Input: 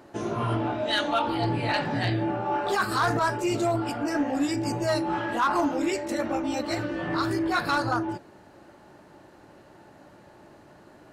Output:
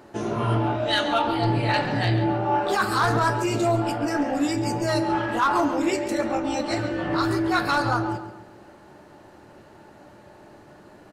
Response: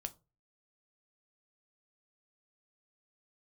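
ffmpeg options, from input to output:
-filter_complex "[0:a]asettb=1/sr,asplit=3[a][b][c];[a]atrim=end=6.184[d];[b]atrim=start=6.18:end=6.82,asetpts=PTS-STARTPTS,afade=t=in:d=0.004:c=qsin,afade=t=out:st=0.636:d=0.004:c=qsin,lowpass=f=11k:w=0.5412,lowpass=f=11k:w=1.3066[e];[c]atrim=start=6.816[f];[d][e]acrossfade=d=0.004:c1=hsin:c2=qsin[g];[g][f]acrossfade=d=0.004:c1=qsin:c2=hsin,asplit=2[h][i];[i]adelay=137,lowpass=f=4.7k:p=1,volume=-10.5dB,asplit=2[j][k];[k]adelay=137,lowpass=f=4.7k:p=1,volume=0.4,asplit=2[l][m];[m]adelay=137,lowpass=f=4.7k:p=1,volume=0.4,asplit=2[n][o];[o]adelay=137,lowpass=f=4.7k:p=1,volume=0.4[p];[h][j][l][n][p]amix=inputs=5:normalize=0,asplit=2[q][r];[1:a]atrim=start_sample=2205[s];[r][s]afir=irnorm=-1:irlink=0,volume=9.5dB[t];[q][t]amix=inputs=2:normalize=0,volume=-7.5dB"

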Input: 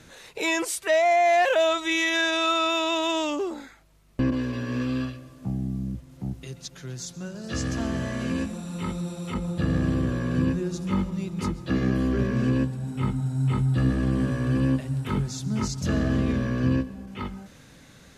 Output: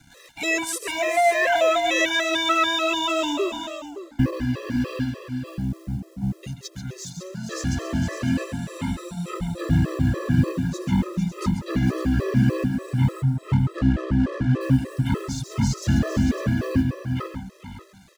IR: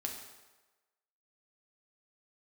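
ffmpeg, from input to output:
-filter_complex "[0:a]lowshelf=f=120:g=-8,acrossover=split=160|1300[a][b][c];[a]acontrast=84[d];[d][b][c]amix=inputs=3:normalize=0,acrusher=bits=9:mode=log:mix=0:aa=0.000001,aeval=exprs='sgn(val(0))*max(abs(val(0))-0.00266,0)':c=same,asettb=1/sr,asplit=3[e][f][g];[e]atrim=end=13.224[h];[f]atrim=start=13.22:end=14.61,asetpts=PTS-STARTPTS,afade=t=in:d=0.004:c=qsin,afade=t=out:st=1.386:d=0.004:c=qsin,adynamicsmooth=sensitivity=7.5:basefreq=1.2k[i];[g]atrim=start=14.606[j];[h][i]acrossfade=d=0.004:c1=hsin:c2=qsin[k];[k][j]acrossfade=d=0.004:c1=qsin:c2=hsin,asplit=2[l][m];[m]aecho=0:1:135|453|556:0.316|0.316|0.266[n];[l][n]amix=inputs=2:normalize=0,afftfilt=real='re*gt(sin(2*PI*3.4*pts/sr)*(1-2*mod(floor(b*sr/1024/340),2)),0)':imag='im*gt(sin(2*PI*3.4*pts/sr)*(1-2*mod(floor(b*sr/1024/340),2)),0)':win_size=1024:overlap=0.75,volume=5dB"

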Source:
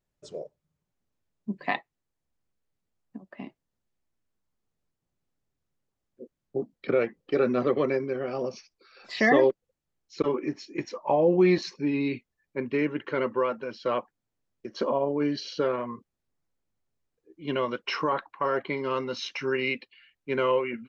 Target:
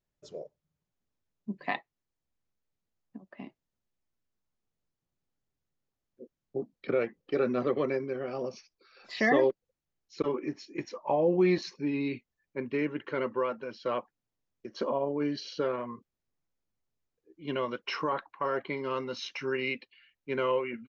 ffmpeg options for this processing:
-af "aresample=16000,aresample=44100,volume=-4dB"

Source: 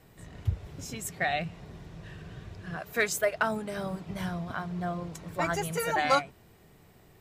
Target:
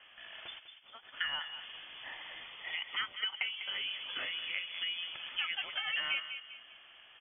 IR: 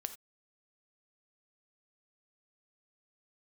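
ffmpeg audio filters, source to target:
-filter_complex "[0:a]highpass=540,asplit=3[a][b][c];[a]afade=t=out:st=0.58:d=0.02[d];[b]agate=range=-33dB:threshold=-33dB:ratio=3:detection=peak,afade=t=in:st=0.58:d=0.02,afade=t=out:st=1.12:d=0.02[e];[c]afade=t=in:st=1.12:d=0.02[f];[d][e][f]amix=inputs=3:normalize=0,asettb=1/sr,asplit=3[g][h][i];[g]atrim=end=2.434[j];[h]atrim=start=2.43:end=3.53,asetpts=PTS-STARTPTS,afade=t=in:d=0.004:c=qsin,afade=t=out:st=1.096:d=0.004:c=qsin,bandreject=f=1.9k:w=7.9[k];[i]atrim=start=3.526[l];[j][k]acrossfade=d=0.004:c1=hsin:c2=qsin[m];[m][l]acrossfade=d=0.004:c1=qsin:c2=hsin,acompressor=threshold=-42dB:ratio=4,asplit=2[n][o];[o]adelay=199,lowpass=f=1.4k:p=1,volume=-7dB,asplit=2[p][q];[q]adelay=199,lowpass=f=1.4k:p=1,volume=0.48,asplit=2[r][s];[s]adelay=199,lowpass=f=1.4k:p=1,volume=0.48,asplit=2[t][u];[u]adelay=199,lowpass=f=1.4k:p=1,volume=0.48,asplit=2[v][w];[w]adelay=199,lowpass=f=1.4k:p=1,volume=0.48,asplit=2[x][y];[y]adelay=199,lowpass=f=1.4k:p=1,volume=0.48[z];[n][p][r][t][v][x][z]amix=inputs=7:normalize=0,lowpass=f=3.1k:t=q:w=0.5098,lowpass=f=3.1k:t=q:w=0.6013,lowpass=f=3.1k:t=q:w=0.9,lowpass=f=3.1k:t=q:w=2.563,afreqshift=-3600,volume=6.5dB"

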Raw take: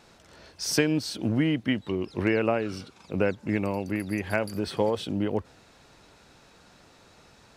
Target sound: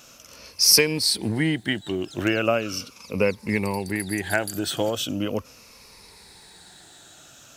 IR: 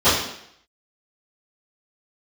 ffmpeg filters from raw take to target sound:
-af "afftfilt=real='re*pow(10,10/40*sin(2*PI*(0.88*log(max(b,1)*sr/1024/100)/log(2)-(-0.39)*(pts-256)/sr)))':imag='im*pow(10,10/40*sin(2*PI*(0.88*log(max(b,1)*sr/1024/100)/log(2)-(-0.39)*(pts-256)/sr)))':win_size=1024:overlap=0.75,crystalizer=i=4:c=0"

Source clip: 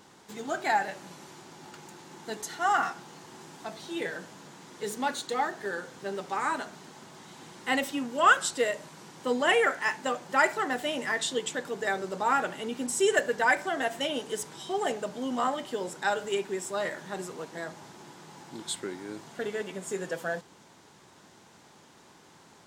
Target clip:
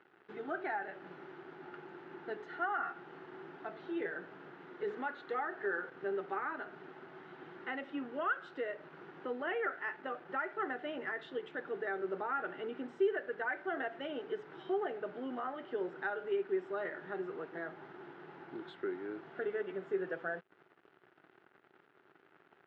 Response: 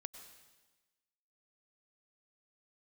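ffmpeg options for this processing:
-filter_complex "[0:a]asettb=1/sr,asplit=3[a][b][c];[a]atrim=end=4.884[d];[b]atrim=start=4.88:end=5.9,asetpts=PTS-STARTPTS,afade=t=in:d=0.004:c=qsin,afade=t=out:st=1.016:d=0.004:c=qsin,equalizer=f=1.4k:w=0.43:g=5[e];[c]atrim=start=5.896[f];[d][e]acrossfade=d=0.004:c1=hsin:c2=qsin[g];[g][f]acrossfade=d=0.004:c1=qsin:c2=hsin,asplit=2[h][i];[i]acompressor=threshold=-39dB:ratio=5,volume=0.5dB[j];[h][j]amix=inputs=2:normalize=0,alimiter=limit=-18.5dB:level=0:latency=1:release=251,acrusher=bits=6:mix=0:aa=0.5,highpass=180,equalizer=f=220:t=q:w=4:g=-9,equalizer=f=380:t=q:w=4:g=7,equalizer=f=540:t=q:w=4:g=-4,equalizer=f=990:t=q:w=4:g=-7,equalizer=f=1.4k:t=q:w=4:g=5,equalizer=f=2.3k:t=q:w=4:g=-5,lowpass=f=2.4k:w=0.5412,lowpass=f=2.4k:w=1.3066,volume=-8dB"

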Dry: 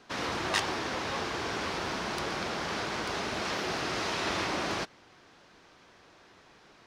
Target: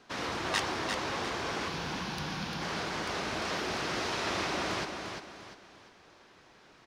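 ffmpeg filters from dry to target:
-filter_complex "[0:a]asettb=1/sr,asplit=3[a][b][c];[a]atrim=end=1.684[d];[b]atrim=start=1.68:end=2.62,asetpts=PTS-STARTPTS,afade=t=in:d=0.004:c=qsin,afade=t=out:st=0.936:d=0.004:c=qsin,equalizer=f=160:t=o:w=0.33:g=10,equalizer=f=400:t=o:w=0.33:g=-12,equalizer=f=630:t=o:w=0.33:g=-10,equalizer=f=1.25k:t=o:w=0.33:g=-6,equalizer=f=2k:t=o:w=0.33:g=-5,equalizer=f=8k:t=o:w=0.33:g=-10[e];[c]atrim=start=2.616[f];[d][e]acrossfade=d=0.004:c1=hsin:c2=qsin[g];[g][f]acrossfade=d=0.004:c1=qsin:c2=hsin,asplit=2[h][i];[i]aecho=0:1:348|696|1044|1392:0.501|0.18|0.065|0.0234[j];[h][j]amix=inputs=2:normalize=0,volume=-2dB"

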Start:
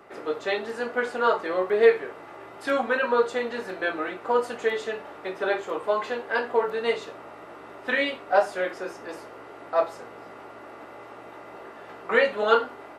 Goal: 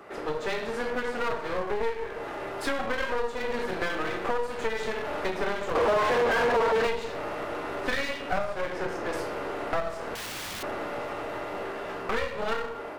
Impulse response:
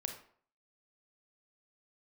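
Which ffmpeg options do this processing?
-filter_complex "[0:a]asettb=1/sr,asplit=3[a][b][c];[a]atrim=end=8.444[d];[b]atrim=start=8.44:end=9.13,asetpts=PTS-STARTPTS,afade=t=in:d=0.004:c=qsin,afade=t=out:st=0.686:d=0.004:c=qsin,highshelf=f=3.6k:g=-8.5[e];[c]atrim=start=9.126[f];[d][e]acrossfade=d=0.004:c1=hsin:c2=qsin[g];[g][f]acrossfade=d=0.004:c1=qsin:c2=hsin[h];[1:a]atrim=start_sample=2205[i];[h][i]afir=irnorm=-1:irlink=0,asettb=1/sr,asplit=3[j][k][l];[j]atrim=end=10.154[m];[k]atrim=start=10.15:end=10.63,asetpts=PTS-STARTPTS,afade=t=in:d=0.004:c=qsin,afade=t=out:st=0.476:d=0.004:c=qsin,aeval=exprs='(mod(141*val(0)+1,2)-1)/141':c=same[n];[l]atrim=start=10.626[o];[m][n]acrossfade=d=0.004:c1=hsin:c2=qsin[p];[p][o]acrossfade=d=0.004:c1=qsin:c2=hsin,dynaudnorm=f=770:g=5:m=11.5dB,aeval=exprs='clip(val(0),-1,0.0106)':c=same,acompressor=threshold=-30dB:ratio=6,asettb=1/sr,asplit=3[q][r][s];[q]atrim=end=5.754[t];[r]atrim=start=5.75:end=6.87,asetpts=PTS-STARTPTS,afade=t=in:d=0.004:c=qsin,afade=t=out:st=1.116:d=0.004:c=qsin,asplit=2[u][v];[v]highpass=f=720:p=1,volume=33dB,asoftclip=type=tanh:threshold=-20dB[w];[u][w]amix=inputs=2:normalize=0,lowpass=f=1.2k:p=1,volume=-6dB[x];[s]atrim=start=6.866[y];[t][x]acrossfade=d=0.004:c1=hsin:c2=qsin[z];[z][y]acrossfade=d=0.004:c1=qsin:c2=hsin,volume=5dB"

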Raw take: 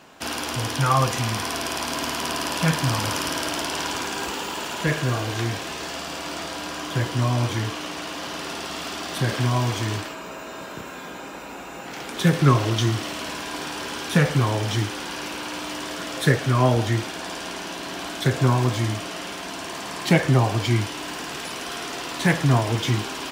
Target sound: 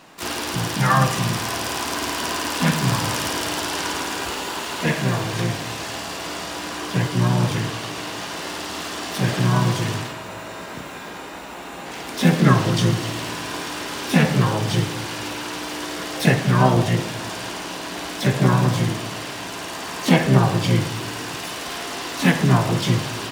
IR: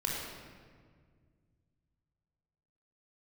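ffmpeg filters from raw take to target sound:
-filter_complex "[0:a]asplit=3[a][b][c];[b]asetrate=52444,aresample=44100,atempo=0.840896,volume=-8dB[d];[c]asetrate=66075,aresample=44100,atempo=0.66742,volume=-5dB[e];[a][d][e]amix=inputs=3:normalize=0,asplit=2[f][g];[1:a]atrim=start_sample=2205,asetrate=83790,aresample=44100[h];[g][h]afir=irnorm=-1:irlink=0,volume=-8.5dB[i];[f][i]amix=inputs=2:normalize=0,volume=-1.5dB"

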